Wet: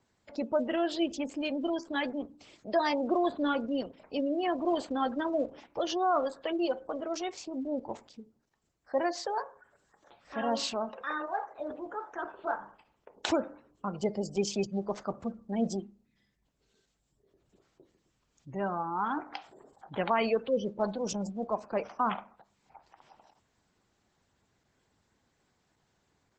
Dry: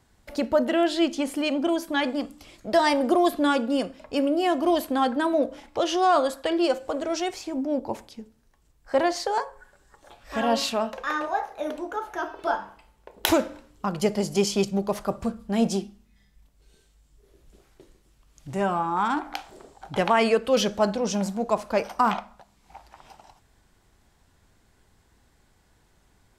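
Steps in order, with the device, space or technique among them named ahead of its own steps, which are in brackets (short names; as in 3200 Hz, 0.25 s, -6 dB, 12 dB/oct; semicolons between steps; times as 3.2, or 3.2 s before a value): spectral gain 20.49–20.79, 600–10000 Hz -12 dB; noise-suppressed video call (HPF 110 Hz 12 dB/oct; spectral gate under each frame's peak -25 dB strong; gain -7 dB; Opus 12 kbps 48000 Hz)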